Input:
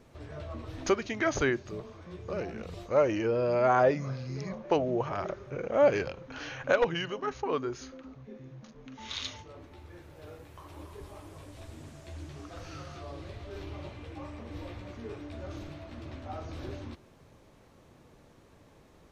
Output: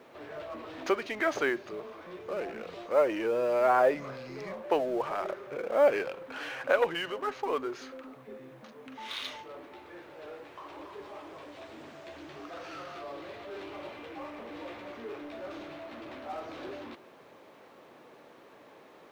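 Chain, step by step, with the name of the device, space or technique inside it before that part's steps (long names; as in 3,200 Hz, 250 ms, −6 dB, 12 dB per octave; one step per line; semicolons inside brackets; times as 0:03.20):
phone line with mismatched companding (band-pass filter 370–3,400 Hz; mu-law and A-law mismatch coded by mu)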